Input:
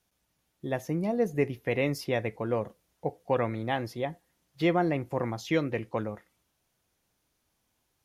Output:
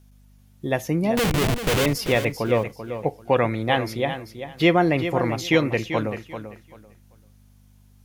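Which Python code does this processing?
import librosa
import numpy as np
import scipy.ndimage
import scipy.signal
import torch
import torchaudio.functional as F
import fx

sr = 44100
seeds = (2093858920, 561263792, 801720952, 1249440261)

p1 = fx.schmitt(x, sr, flips_db=-36.5, at=(1.17, 1.86))
p2 = fx.high_shelf(p1, sr, hz=7000.0, db=4.5)
p3 = fx.add_hum(p2, sr, base_hz=50, snr_db=28)
p4 = fx.dynamic_eq(p3, sr, hz=2800.0, q=1.2, threshold_db=-50.0, ratio=4.0, max_db=5)
p5 = p4 + fx.echo_feedback(p4, sr, ms=389, feedback_pct=21, wet_db=-10.0, dry=0)
y = p5 * 10.0 ** (7.0 / 20.0)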